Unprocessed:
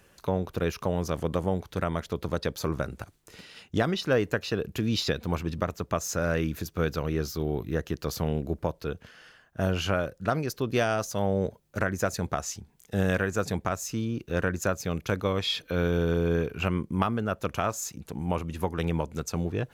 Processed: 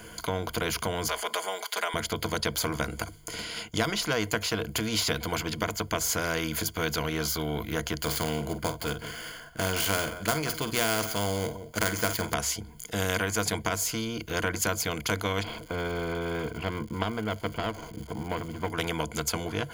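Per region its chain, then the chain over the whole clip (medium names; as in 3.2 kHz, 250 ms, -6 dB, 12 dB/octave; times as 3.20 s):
1.07–1.94 s: high-pass 640 Hz 24 dB/octave + comb 4.9 ms, depth 100% + three bands compressed up and down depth 40%
7.98–12.34 s: dead-time distortion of 0.065 ms + doubling 48 ms -13 dB + delay 176 ms -21 dB
15.42–18.70 s: median filter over 25 samples + tape spacing loss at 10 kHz 29 dB + crackle 330 per s -51 dBFS
whole clip: rippled EQ curve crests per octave 1.8, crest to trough 14 dB; spectrum-flattening compressor 2:1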